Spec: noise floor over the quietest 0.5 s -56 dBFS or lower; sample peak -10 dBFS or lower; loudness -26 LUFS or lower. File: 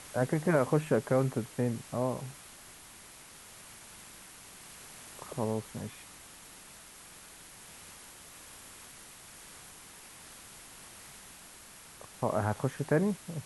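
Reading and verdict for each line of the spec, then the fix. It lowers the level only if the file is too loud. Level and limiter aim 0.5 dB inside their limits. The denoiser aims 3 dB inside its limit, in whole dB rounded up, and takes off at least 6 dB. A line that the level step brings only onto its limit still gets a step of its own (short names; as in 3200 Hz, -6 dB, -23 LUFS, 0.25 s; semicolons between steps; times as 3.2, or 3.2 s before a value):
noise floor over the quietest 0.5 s -52 dBFS: fail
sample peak -13.5 dBFS: OK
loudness -32.0 LUFS: OK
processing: denoiser 7 dB, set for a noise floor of -52 dBFS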